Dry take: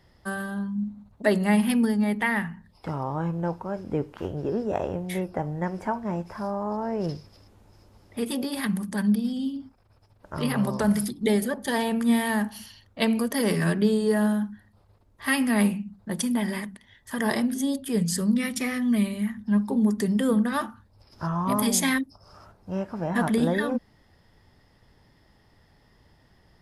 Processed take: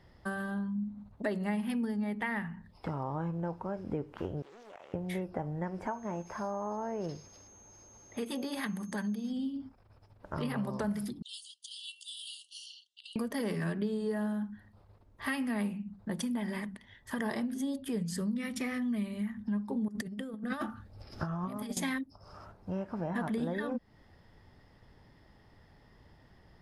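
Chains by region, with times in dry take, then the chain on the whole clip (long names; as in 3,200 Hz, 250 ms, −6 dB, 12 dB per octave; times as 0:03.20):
0:04.42–0:04.94: high-pass filter 1,300 Hz + downward compressor 4 to 1, threshold −48 dBFS + highs frequency-modulated by the lows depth 0.5 ms
0:05.86–0:09.29: low-shelf EQ 220 Hz −9 dB + steady tone 6,400 Hz −50 dBFS
0:11.22–0:13.16: linear-phase brick-wall band-pass 2,700–10,000 Hz + compressor whose output falls as the input rises −41 dBFS, ratio −0.5
0:19.88–0:21.77: notch filter 980 Hz, Q 5.1 + compressor whose output falls as the input rises −30 dBFS, ratio −0.5
whole clip: high-shelf EQ 4,700 Hz −9 dB; downward compressor 3 to 1, threshold −34 dBFS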